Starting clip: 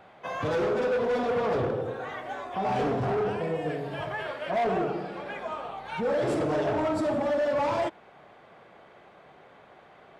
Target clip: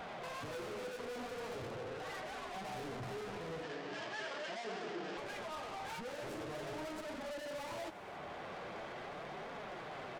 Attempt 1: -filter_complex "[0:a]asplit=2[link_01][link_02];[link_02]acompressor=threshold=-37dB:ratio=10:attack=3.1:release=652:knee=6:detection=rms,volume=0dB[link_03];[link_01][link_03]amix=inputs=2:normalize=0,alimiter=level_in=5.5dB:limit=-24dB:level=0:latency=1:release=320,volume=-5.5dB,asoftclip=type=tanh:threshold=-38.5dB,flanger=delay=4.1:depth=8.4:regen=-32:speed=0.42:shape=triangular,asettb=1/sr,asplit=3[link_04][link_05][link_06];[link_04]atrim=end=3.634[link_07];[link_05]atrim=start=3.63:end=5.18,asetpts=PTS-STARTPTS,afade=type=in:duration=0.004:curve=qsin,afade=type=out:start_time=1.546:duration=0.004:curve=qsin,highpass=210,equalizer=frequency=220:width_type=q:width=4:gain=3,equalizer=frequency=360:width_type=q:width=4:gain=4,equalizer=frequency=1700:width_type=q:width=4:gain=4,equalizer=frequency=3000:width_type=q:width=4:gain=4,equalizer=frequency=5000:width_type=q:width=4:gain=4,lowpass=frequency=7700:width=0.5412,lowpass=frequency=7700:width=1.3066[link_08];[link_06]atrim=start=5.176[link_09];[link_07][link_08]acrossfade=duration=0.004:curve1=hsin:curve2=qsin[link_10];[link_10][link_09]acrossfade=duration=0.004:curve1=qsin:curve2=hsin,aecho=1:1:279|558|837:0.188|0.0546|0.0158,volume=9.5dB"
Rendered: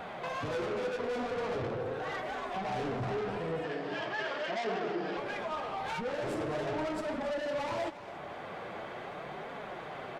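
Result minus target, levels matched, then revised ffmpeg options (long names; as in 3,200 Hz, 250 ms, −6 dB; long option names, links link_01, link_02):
soft clipping: distortion −6 dB
-filter_complex "[0:a]asplit=2[link_01][link_02];[link_02]acompressor=threshold=-37dB:ratio=10:attack=3.1:release=652:knee=6:detection=rms,volume=0dB[link_03];[link_01][link_03]amix=inputs=2:normalize=0,alimiter=level_in=5.5dB:limit=-24dB:level=0:latency=1:release=320,volume=-5.5dB,asoftclip=type=tanh:threshold=-49dB,flanger=delay=4.1:depth=8.4:regen=-32:speed=0.42:shape=triangular,asettb=1/sr,asplit=3[link_04][link_05][link_06];[link_04]atrim=end=3.634[link_07];[link_05]atrim=start=3.63:end=5.18,asetpts=PTS-STARTPTS,afade=type=in:duration=0.004:curve=qsin,afade=type=out:start_time=1.546:duration=0.004:curve=qsin,highpass=210,equalizer=frequency=220:width_type=q:width=4:gain=3,equalizer=frequency=360:width_type=q:width=4:gain=4,equalizer=frequency=1700:width_type=q:width=4:gain=4,equalizer=frequency=3000:width_type=q:width=4:gain=4,equalizer=frequency=5000:width_type=q:width=4:gain=4,lowpass=frequency=7700:width=0.5412,lowpass=frequency=7700:width=1.3066[link_08];[link_06]atrim=start=5.176[link_09];[link_07][link_08]acrossfade=duration=0.004:curve1=hsin:curve2=qsin[link_10];[link_10][link_09]acrossfade=duration=0.004:curve1=qsin:curve2=hsin,aecho=1:1:279|558|837:0.188|0.0546|0.0158,volume=9.5dB"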